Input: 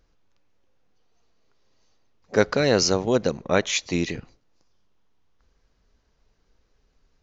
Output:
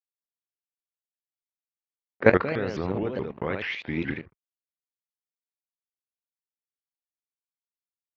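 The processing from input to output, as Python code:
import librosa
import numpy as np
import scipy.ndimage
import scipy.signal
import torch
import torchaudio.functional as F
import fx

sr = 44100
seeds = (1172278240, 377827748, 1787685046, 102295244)

p1 = fx.speed_glide(x, sr, from_pct=112, to_pct=65)
p2 = fx.graphic_eq_31(p1, sr, hz=(100, 630, 2000), db=(6, -3, 4))
p3 = np.sign(p2) * np.maximum(np.abs(p2) - 10.0 ** (-42.5 / 20.0), 0.0)
p4 = scipy.signal.sosfilt(scipy.signal.butter(2, 48.0, 'highpass', fs=sr, output='sos'), p3)
p5 = fx.level_steps(p4, sr, step_db=16)
p6 = scipy.signal.sosfilt(scipy.signal.butter(4, 2800.0, 'lowpass', fs=sr, output='sos'), p5)
p7 = fx.low_shelf(p6, sr, hz=81.0, db=-5.5)
p8 = p7 + fx.room_early_taps(p7, sr, ms=(23, 78), db=(-13.0, -5.5), dry=0)
p9 = fx.vibrato_shape(p8, sr, shape='saw_up', rate_hz=4.7, depth_cents=250.0)
y = F.gain(torch.from_numpy(p9), 4.0).numpy()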